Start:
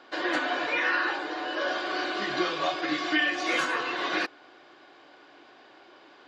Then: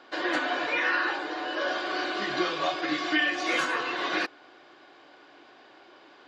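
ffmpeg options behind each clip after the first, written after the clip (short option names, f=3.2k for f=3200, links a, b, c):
-af anull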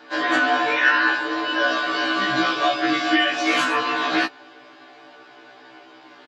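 -af "aecho=1:1:6.8:0.67,afftfilt=real='re*1.73*eq(mod(b,3),0)':imag='im*1.73*eq(mod(b,3),0)':win_size=2048:overlap=0.75,volume=8dB"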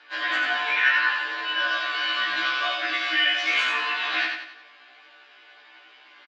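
-filter_complex "[0:a]bandpass=f=2.5k:t=q:w=1.3:csg=0,asplit=2[a][b];[b]aecho=0:1:89|178|267|356|445:0.596|0.256|0.11|0.0474|0.0204[c];[a][c]amix=inputs=2:normalize=0"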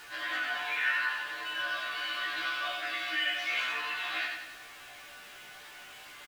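-filter_complex "[0:a]aeval=exprs='val(0)+0.5*0.0168*sgn(val(0))':c=same,flanger=delay=2.1:depth=6.1:regen=-65:speed=0.42:shape=triangular,asplit=2[a][b];[b]adelay=17,volume=-13.5dB[c];[a][c]amix=inputs=2:normalize=0,volume=-5.5dB"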